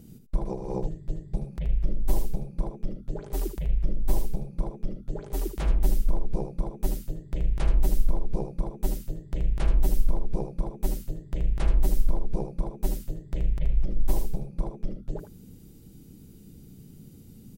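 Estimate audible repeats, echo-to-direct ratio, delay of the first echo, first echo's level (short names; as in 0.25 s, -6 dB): 1, -8.5 dB, 78 ms, -8.5 dB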